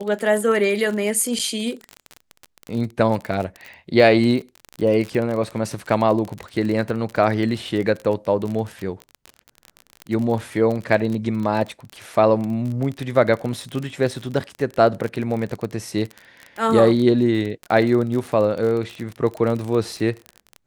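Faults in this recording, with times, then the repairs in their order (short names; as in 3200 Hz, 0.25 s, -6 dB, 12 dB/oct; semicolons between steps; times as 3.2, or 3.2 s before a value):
crackle 33/s -25 dBFS
1.39–1.4 gap 6 ms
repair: de-click; interpolate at 1.39, 6 ms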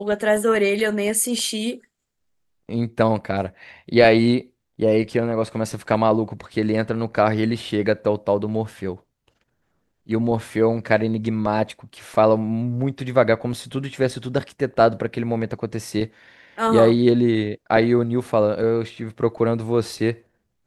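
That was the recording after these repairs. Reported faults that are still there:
none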